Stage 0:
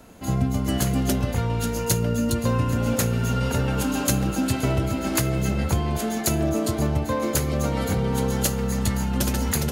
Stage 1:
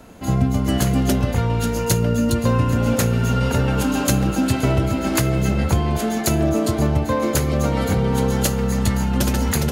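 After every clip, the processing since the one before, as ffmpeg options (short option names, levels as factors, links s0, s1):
-af "highshelf=f=5200:g=-4.5,volume=1.68"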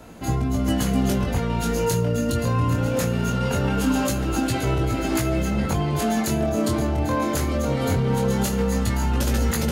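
-af "alimiter=limit=0.2:level=0:latency=1:release=45,flanger=delay=17.5:depth=6.7:speed=0.21,volume=1.5"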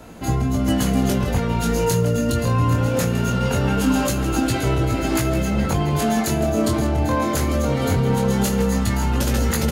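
-af "aecho=1:1:162:0.211,volume=1.33"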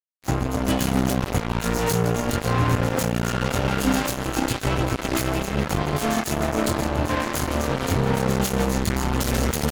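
-af "acrusher=bits=2:mix=0:aa=0.5,volume=0.708"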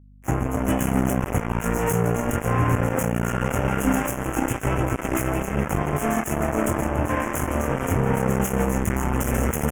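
-af "aeval=exprs='val(0)+0.00398*(sin(2*PI*50*n/s)+sin(2*PI*2*50*n/s)/2+sin(2*PI*3*50*n/s)/3+sin(2*PI*4*50*n/s)/4+sin(2*PI*5*50*n/s)/5)':c=same,asuperstop=centerf=4200:order=4:qfactor=1"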